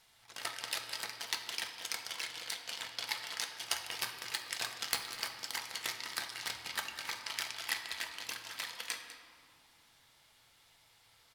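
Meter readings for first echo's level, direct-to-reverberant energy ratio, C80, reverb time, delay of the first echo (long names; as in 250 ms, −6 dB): −14.5 dB, 3.5 dB, 7.0 dB, 2.5 s, 199 ms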